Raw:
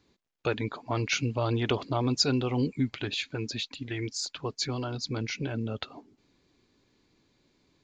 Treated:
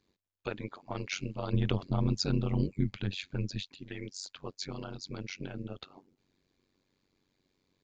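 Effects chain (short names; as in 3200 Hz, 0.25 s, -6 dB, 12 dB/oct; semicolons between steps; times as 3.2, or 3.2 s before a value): 1.53–3.64 bell 96 Hz +15 dB 1.3 oct; AM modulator 94 Hz, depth 95%; gain -4 dB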